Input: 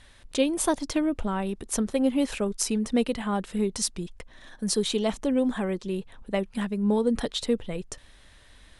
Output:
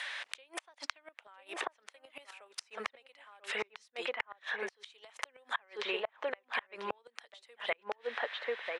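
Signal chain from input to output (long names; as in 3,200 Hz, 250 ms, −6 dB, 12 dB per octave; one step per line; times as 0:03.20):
high-pass filter 600 Hz 24 dB per octave
slap from a distant wall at 170 metres, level −7 dB
downward compressor 12 to 1, threshold −34 dBFS, peak gain reduction 12.5 dB
gate with flip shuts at −30 dBFS, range −35 dB
parametric band 2,200 Hz +10.5 dB 1.7 octaves
treble cut that deepens with the level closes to 2,300 Hz, closed at −40.5 dBFS
multiband upward and downward compressor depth 40%
level +7 dB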